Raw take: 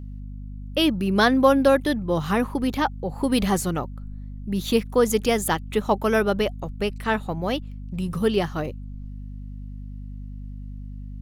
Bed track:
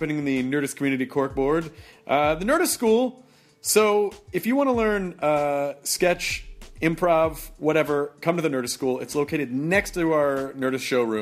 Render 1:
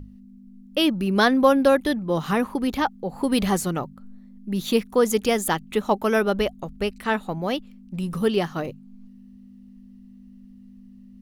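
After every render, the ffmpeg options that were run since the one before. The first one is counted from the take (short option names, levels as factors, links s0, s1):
-af "bandreject=f=50:t=h:w=6,bandreject=f=100:t=h:w=6,bandreject=f=150:t=h:w=6"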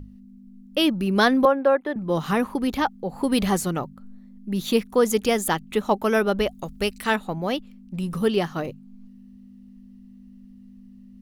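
-filter_complex "[0:a]asettb=1/sr,asplit=3[s0][s1][s2];[s0]atrim=end=1.454[s3];[s1]atrim=start=1.45:end=1.96,asetpts=PTS-STARTPTS,afade=t=in:d=0.004:c=qsin,afade=t=out:st=0.506:d=0.004:c=qsin,acrossover=split=320 2100:gain=0.0708 1 0.0794[s4][s5][s6];[s4][s5][s6]amix=inputs=3:normalize=0[s7];[s2]atrim=start=1.956[s8];[s3][s7]acrossfade=d=0.004:c1=hsin:c2=qsin[s9];[s9][s8]acrossfade=d=0.004:c1=qsin:c2=hsin,asettb=1/sr,asplit=3[s10][s11][s12];[s10]atrim=end=6.504[s13];[s11]atrim=start=6.5:end=7.16,asetpts=PTS-STARTPTS,afade=t=in:d=0.004:c=qsin,afade=t=out:st=0.656:d=0.004:c=qsin,highshelf=f=3300:g=10[s14];[s12]atrim=start=7.156[s15];[s13][s14]acrossfade=d=0.004:c1=hsin:c2=qsin[s16];[s16][s15]acrossfade=d=0.004:c1=qsin:c2=hsin"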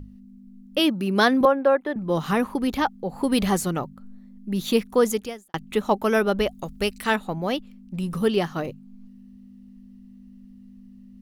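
-filter_complex "[0:a]asettb=1/sr,asplit=3[s0][s1][s2];[s0]atrim=end=0.794[s3];[s1]atrim=start=0.79:end=1.41,asetpts=PTS-STARTPTS,afade=t=in:d=0.004:c=qsin,afade=t=out:st=0.616:d=0.004:c=qsin,highpass=160[s4];[s2]atrim=start=1.406[s5];[s3][s4]acrossfade=d=0.004:c1=hsin:c2=qsin[s6];[s6][s5]acrossfade=d=0.004:c1=qsin:c2=hsin,asplit=2[s7][s8];[s7]atrim=end=5.54,asetpts=PTS-STARTPTS,afade=t=out:st=5.06:d=0.48:c=qua[s9];[s8]atrim=start=5.54,asetpts=PTS-STARTPTS,afade=t=in:d=0.004:c=hsin[s10];[s9][s10]concat=n=2:v=0:a=1"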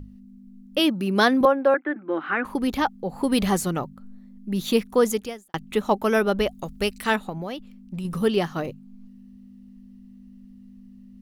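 -filter_complex "[0:a]asettb=1/sr,asplit=3[s0][s1][s2];[s0]atrim=end=1.744[s3];[s1]atrim=start=1.74:end=2.45,asetpts=PTS-STARTPTS,afade=t=in:d=0.004:c=qsin,afade=t=out:st=0.706:d=0.004:c=qsin,highpass=f=310:w=0.5412,highpass=f=310:w=1.3066,equalizer=f=310:t=q:w=4:g=9,equalizer=f=440:t=q:w=4:g=-9,equalizer=f=630:t=q:w=4:g=-6,equalizer=f=960:t=q:w=4:g=-7,equalizer=f=1500:t=q:w=4:g=10,equalizer=f=2200:t=q:w=4:g=4,lowpass=f=2500:w=0.5412,lowpass=f=2500:w=1.3066[s4];[s2]atrim=start=2.446[s5];[s3][s4]acrossfade=d=0.004:c1=hsin:c2=qsin[s6];[s6][s5]acrossfade=d=0.004:c1=qsin:c2=hsin,asettb=1/sr,asplit=3[s7][s8][s9];[s7]atrim=end=7.294[s10];[s8]atrim=start=7.29:end=8.05,asetpts=PTS-STARTPTS,afade=t=in:d=0.004:c=qsin,afade=t=out:st=0.756:d=0.004:c=qsin,acompressor=threshold=0.0398:ratio=4:attack=3.2:release=140:knee=1:detection=peak[s11];[s9]atrim=start=8.046[s12];[s10][s11]acrossfade=d=0.004:c1=hsin:c2=qsin[s13];[s13][s12]acrossfade=d=0.004:c1=qsin:c2=hsin"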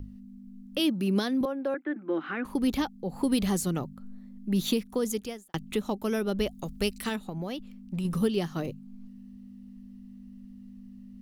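-filter_complex "[0:a]alimiter=limit=0.2:level=0:latency=1:release=443,acrossover=split=410|3000[s0][s1][s2];[s1]acompressor=threshold=0.00708:ratio=2[s3];[s0][s3][s2]amix=inputs=3:normalize=0"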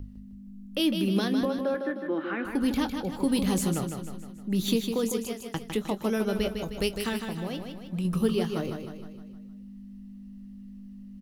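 -filter_complex "[0:a]asplit=2[s0][s1];[s1]adelay=22,volume=0.224[s2];[s0][s2]amix=inputs=2:normalize=0,asplit=2[s3][s4];[s4]aecho=0:1:155|310|465|620|775|930:0.473|0.241|0.123|0.0628|0.032|0.0163[s5];[s3][s5]amix=inputs=2:normalize=0"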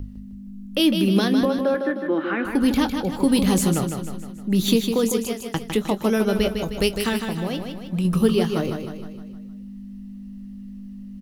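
-af "volume=2.24"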